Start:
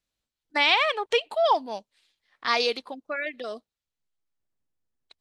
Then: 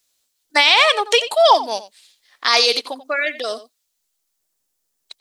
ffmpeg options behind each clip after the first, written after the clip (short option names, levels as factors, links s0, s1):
-filter_complex "[0:a]bass=f=250:g=-13,treble=f=4000:g=13,asplit=2[s0][s1];[s1]adelay=87.46,volume=0.178,highshelf=f=4000:g=-1.97[s2];[s0][s2]amix=inputs=2:normalize=0,alimiter=level_in=3.35:limit=0.891:release=50:level=0:latency=1,volume=0.891"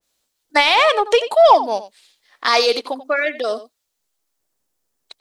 -filter_complex "[0:a]highshelf=f=2000:g=-9,asplit=2[s0][s1];[s1]asoftclip=type=tanh:threshold=0.2,volume=0.531[s2];[s0][s2]amix=inputs=2:normalize=0,adynamicequalizer=threshold=0.0398:dfrequency=1500:dqfactor=0.7:tfrequency=1500:tqfactor=0.7:attack=5:release=100:ratio=0.375:range=3:mode=cutabove:tftype=highshelf,volume=1.19"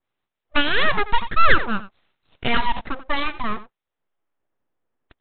-af "lowpass=1900,aresample=8000,aeval=exprs='abs(val(0))':c=same,aresample=44100"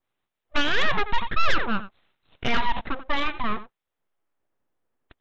-af "aeval=exprs='(tanh(3.55*val(0)+0.05)-tanh(0.05))/3.55':c=same"